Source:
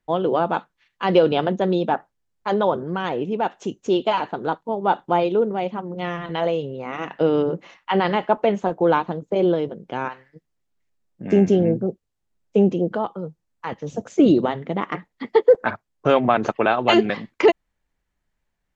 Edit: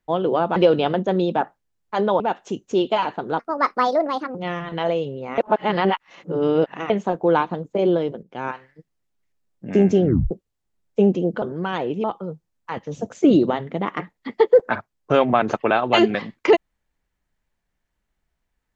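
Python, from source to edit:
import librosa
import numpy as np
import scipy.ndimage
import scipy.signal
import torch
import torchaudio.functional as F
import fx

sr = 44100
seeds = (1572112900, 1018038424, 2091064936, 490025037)

y = fx.edit(x, sr, fx.cut(start_s=0.56, length_s=0.53),
    fx.move(start_s=2.73, length_s=0.62, to_s=12.99),
    fx.speed_span(start_s=4.54, length_s=1.38, speed=1.44),
    fx.reverse_span(start_s=6.95, length_s=1.52),
    fx.fade_in_from(start_s=9.8, length_s=0.26, floor_db=-15.0),
    fx.tape_stop(start_s=11.61, length_s=0.27), tone=tone)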